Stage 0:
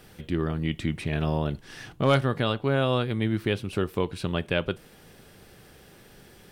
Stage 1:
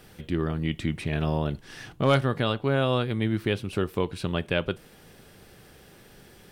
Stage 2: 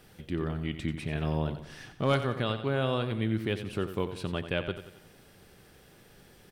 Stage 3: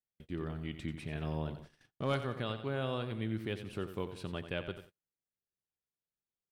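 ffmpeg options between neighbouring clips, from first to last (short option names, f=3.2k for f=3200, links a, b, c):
-af anull
-af "aecho=1:1:90|180|270|360|450:0.282|0.132|0.0623|0.0293|0.0138,volume=-5dB"
-af "agate=range=-41dB:threshold=-43dB:ratio=16:detection=peak,volume=-7dB"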